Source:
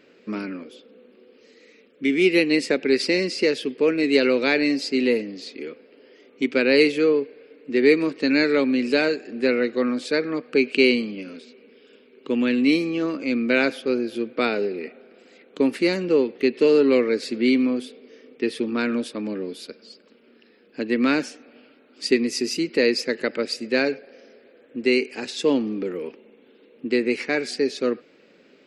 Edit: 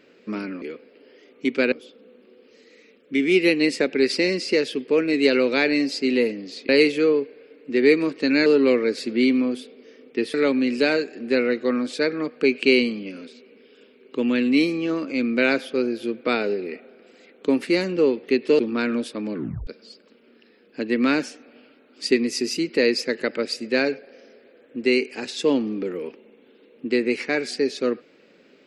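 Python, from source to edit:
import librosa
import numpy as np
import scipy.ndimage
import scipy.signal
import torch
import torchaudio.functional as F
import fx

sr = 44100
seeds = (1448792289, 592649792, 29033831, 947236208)

y = fx.edit(x, sr, fx.move(start_s=5.59, length_s=1.1, to_s=0.62),
    fx.move(start_s=16.71, length_s=1.88, to_s=8.46),
    fx.tape_stop(start_s=19.34, length_s=0.33), tone=tone)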